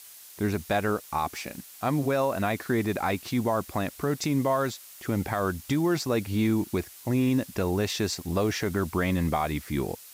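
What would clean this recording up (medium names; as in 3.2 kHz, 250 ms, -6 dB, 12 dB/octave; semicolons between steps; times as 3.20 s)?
noise reduction 25 dB, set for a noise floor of -48 dBFS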